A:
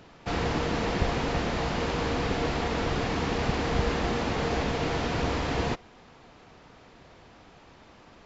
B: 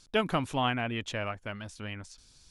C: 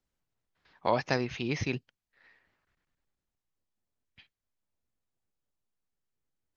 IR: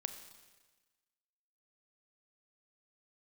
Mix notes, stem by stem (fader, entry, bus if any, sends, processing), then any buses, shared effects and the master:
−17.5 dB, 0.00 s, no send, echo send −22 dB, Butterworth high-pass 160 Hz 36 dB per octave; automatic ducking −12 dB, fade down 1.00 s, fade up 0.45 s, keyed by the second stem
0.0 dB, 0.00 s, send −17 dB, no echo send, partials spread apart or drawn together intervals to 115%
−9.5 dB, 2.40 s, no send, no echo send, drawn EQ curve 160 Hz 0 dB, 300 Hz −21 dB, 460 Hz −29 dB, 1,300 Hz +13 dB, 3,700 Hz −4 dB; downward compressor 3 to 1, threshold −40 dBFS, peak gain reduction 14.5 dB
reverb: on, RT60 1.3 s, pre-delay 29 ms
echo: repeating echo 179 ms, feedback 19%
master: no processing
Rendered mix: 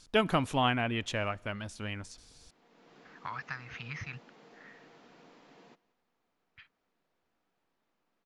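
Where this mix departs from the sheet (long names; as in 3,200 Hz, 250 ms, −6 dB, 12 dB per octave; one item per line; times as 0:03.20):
stem A −17.5 dB → −28.5 dB
stem B: missing partials spread apart or drawn together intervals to 115%
stem C −9.5 dB → −0.5 dB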